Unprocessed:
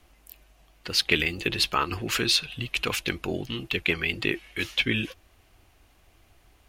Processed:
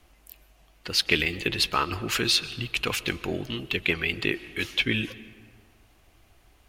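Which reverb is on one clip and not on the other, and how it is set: digital reverb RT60 1.8 s, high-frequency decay 0.55×, pre-delay 90 ms, DRR 16.5 dB

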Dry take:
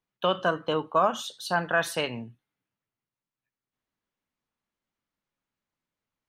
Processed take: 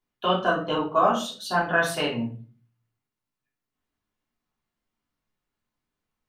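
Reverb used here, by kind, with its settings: shoebox room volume 240 m³, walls furnished, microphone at 3.2 m; gain -3.5 dB

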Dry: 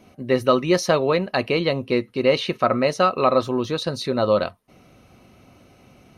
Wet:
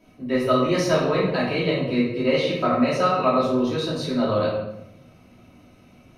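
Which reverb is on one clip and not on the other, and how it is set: shoebox room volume 280 m³, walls mixed, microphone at 2.8 m; gain -10 dB

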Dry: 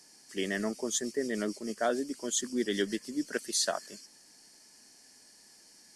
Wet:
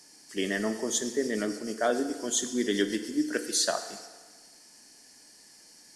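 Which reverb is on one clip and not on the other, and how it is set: FDN reverb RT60 1.5 s, low-frequency decay 0.7×, high-frequency decay 0.8×, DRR 7.5 dB; gain +2.5 dB

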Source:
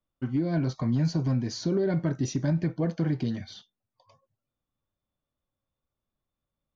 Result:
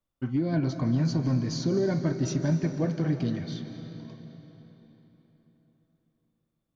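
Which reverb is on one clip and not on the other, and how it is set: digital reverb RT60 4.1 s, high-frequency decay 0.8×, pre-delay 0.115 s, DRR 7.5 dB

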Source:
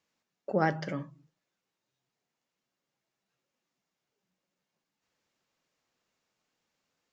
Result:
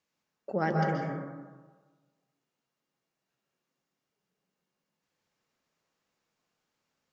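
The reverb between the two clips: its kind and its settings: plate-style reverb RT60 1.4 s, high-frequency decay 0.3×, pre-delay 0.115 s, DRR 0 dB; gain -3 dB

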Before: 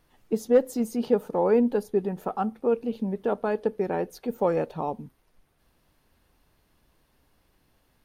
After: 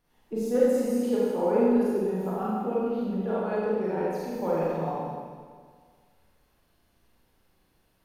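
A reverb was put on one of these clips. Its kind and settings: Schroeder reverb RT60 1.8 s, combs from 33 ms, DRR -8 dB; gain -9.5 dB

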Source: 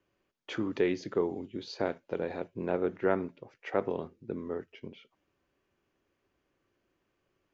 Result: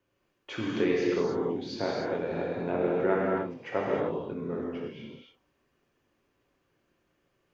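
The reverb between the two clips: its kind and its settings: non-linear reverb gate 0.33 s flat, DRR -4.5 dB; gain -1.5 dB

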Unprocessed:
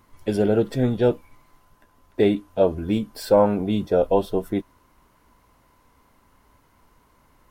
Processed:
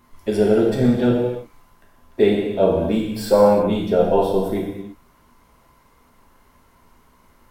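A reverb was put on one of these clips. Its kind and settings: non-linear reverb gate 0.36 s falling, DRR -2 dB

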